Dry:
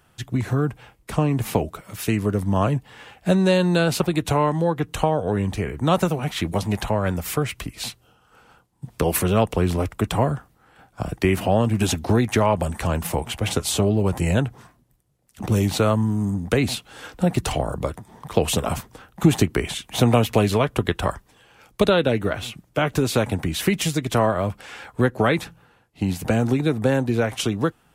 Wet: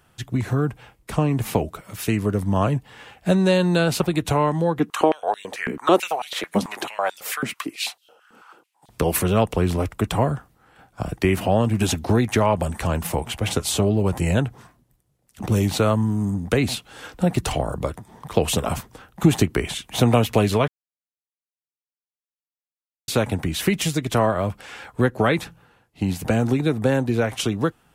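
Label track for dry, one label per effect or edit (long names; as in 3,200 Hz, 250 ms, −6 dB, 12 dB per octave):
4.790000	8.890000	high-pass on a step sequencer 9.1 Hz 230–3,700 Hz
20.680000	23.080000	silence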